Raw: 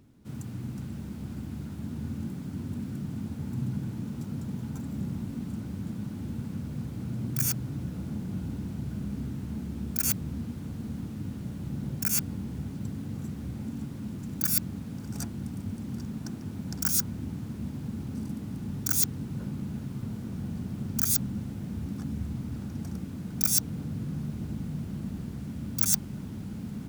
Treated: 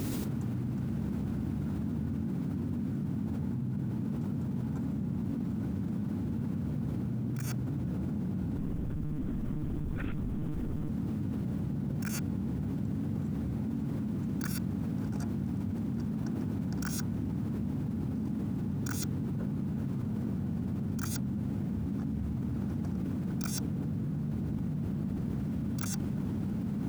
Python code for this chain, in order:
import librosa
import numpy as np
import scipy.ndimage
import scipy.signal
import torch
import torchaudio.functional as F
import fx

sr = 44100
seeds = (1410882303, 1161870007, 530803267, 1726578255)

y = fx.lowpass(x, sr, hz=1100.0, slope=6)
y = fx.low_shelf(y, sr, hz=66.0, db=-10.0)
y = fx.lpc_monotone(y, sr, seeds[0], pitch_hz=150.0, order=10, at=(8.58, 10.89))
y = fx.quant_dither(y, sr, seeds[1], bits=12, dither='triangular')
y = fx.env_flatten(y, sr, amount_pct=100)
y = y * 10.0 ** (-3.0 / 20.0)